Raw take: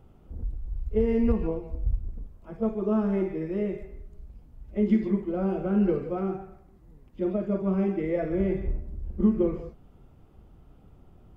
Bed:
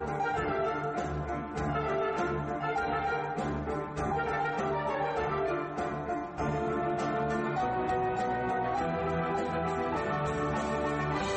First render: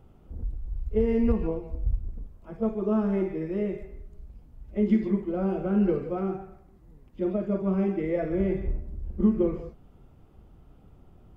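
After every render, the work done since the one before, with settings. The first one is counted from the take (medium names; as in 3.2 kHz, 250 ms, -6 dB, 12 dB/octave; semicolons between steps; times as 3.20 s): no audible change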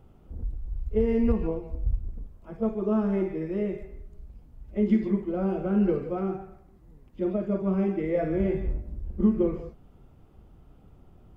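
8.13–9.01 s: doubling 19 ms -5 dB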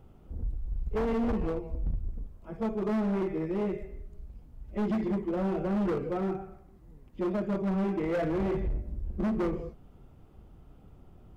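hard clipper -26 dBFS, distortion -8 dB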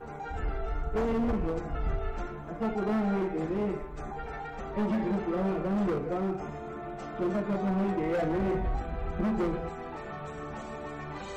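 add bed -8.5 dB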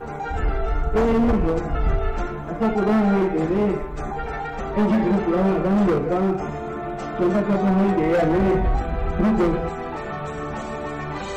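trim +10 dB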